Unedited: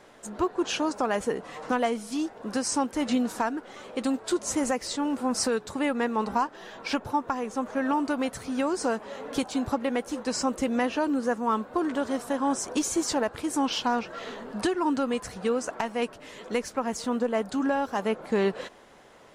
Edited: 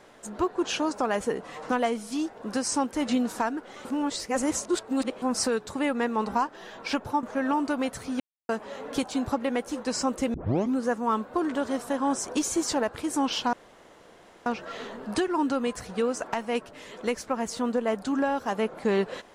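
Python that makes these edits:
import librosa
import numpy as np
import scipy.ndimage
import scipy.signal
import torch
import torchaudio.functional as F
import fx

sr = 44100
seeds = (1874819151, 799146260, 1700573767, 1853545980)

y = fx.edit(x, sr, fx.reverse_span(start_s=3.85, length_s=1.37),
    fx.cut(start_s=7.23, length_s=0.4),
    fx.silence(start_s=8.6, length_s=0.29),
    fx.tape_start(start_s=10.74, length_s=0.42),
    fx.insert_room_tone(at_s=13.93, length_s=0.93), tone=tone)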